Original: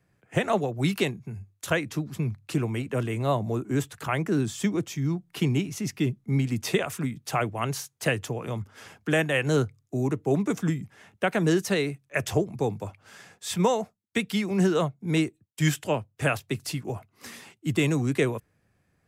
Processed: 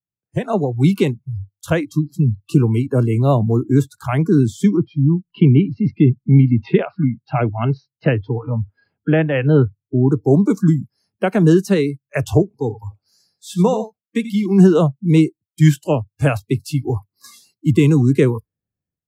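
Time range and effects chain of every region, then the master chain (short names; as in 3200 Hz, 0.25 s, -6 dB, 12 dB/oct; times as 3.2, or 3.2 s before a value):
4.77–10.12 LPF 3100 Hz 24 dB/oct + notch 1100 Hz, Q 14
12.42–14.46 flange 1.8 Hz, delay 2.8 ms, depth 2.3 ms, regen -83% + echo 87 ms -10 dB
whole clip: AGC gain up to 14 dB; tilt shelf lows +6.5 dB, about 650 Hz; spectral noise reduction 30 dB; gain -3.5 dB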